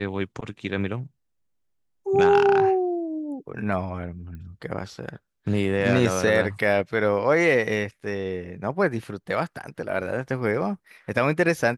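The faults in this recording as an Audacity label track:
4.350000	4.350000	pop -30 dBFS

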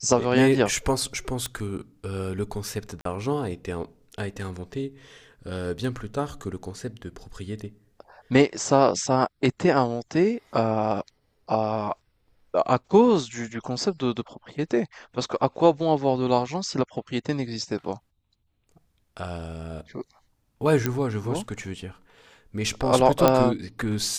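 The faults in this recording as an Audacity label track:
1.460000	1.460000	pop -14 dBFS
3.010000	3.050000	dropout 43 ms
20.860000	20.860000	pop -9 dBFS
23.280000	23.280000	pop -4 dBFS

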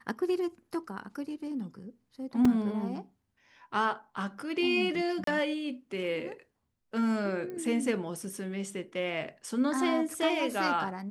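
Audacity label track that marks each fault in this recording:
2.450000	2.450000	dropout 3.5 ms
5.240000	5.270000	dropout 33 ms
7.500000	7.500000	pop -29 dBFS

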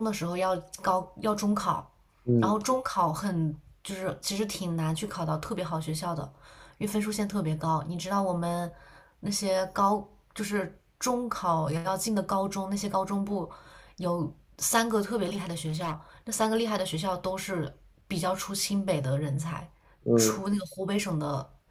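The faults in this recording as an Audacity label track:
15.240000	15.940000	clipped -28 dBFS

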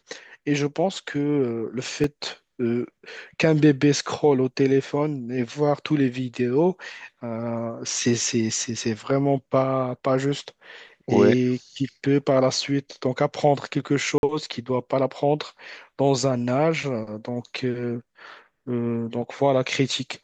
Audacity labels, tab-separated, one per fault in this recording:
2.040000	2.040000	dropout 2.5 ms
14.180000	14.230000	dropout 51 ms

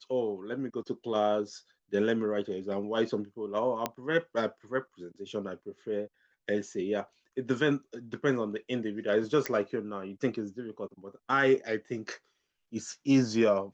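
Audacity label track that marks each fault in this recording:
3.860000	3.860000	pop -14 dBFS
9.460000	9.460000	pop -14 dBFS

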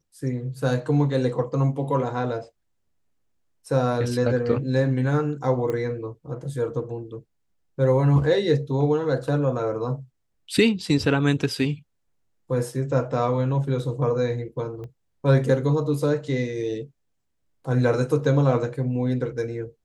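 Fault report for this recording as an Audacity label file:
5.700000	5.700000	pop -17 dBFS
14.840000	14.840000	pop -28 dBFS

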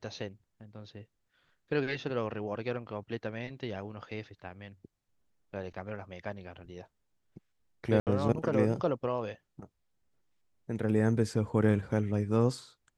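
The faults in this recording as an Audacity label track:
8.000000	8.070000	dropout 68 ms

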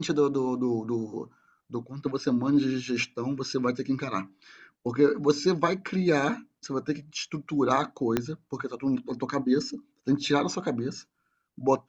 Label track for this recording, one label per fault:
8.170000	8.170000	pop -11 dBFS

